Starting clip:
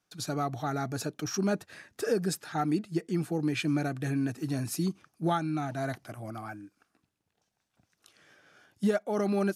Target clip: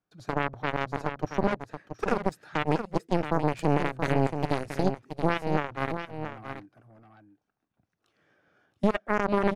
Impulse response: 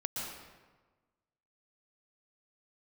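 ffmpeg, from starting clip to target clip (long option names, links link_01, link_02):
-af "asetnsamples=nb_out_samples=441:pad=0,asendcmd='2.32 lowpass f 1900;4.83 lowpass f 1100',lowpass=frequency=1000:poles=1,alimiter=limit=-23.5dB:level=0:latency=1:release=138,aeval=exprs='0.0668*(cos(1*acos(clip(val(0)/0.0668,-1,1)))-cos(1*PI/2))+0.0211*(cos(2*acos(clip(val(0)/0.0668,-1,1)))-cos(2*PI/2))+0.0299*(cos(3*acos(clip(val(0)/0.0668,-1,1)))-cos(3*PI/2))+0.00531*(cos(4*acos(clip(val(0)/0.0668,-1,1)))-cos(4*PI/2))':channel_layout=same,aecho=1:1:677:0.376,volume=6.5dB"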